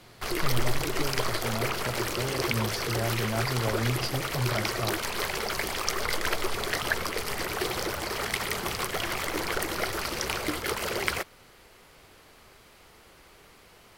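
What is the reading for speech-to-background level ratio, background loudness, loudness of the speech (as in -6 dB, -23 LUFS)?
-3.5 dB, -30.0 LUFS, -33.5 LUFS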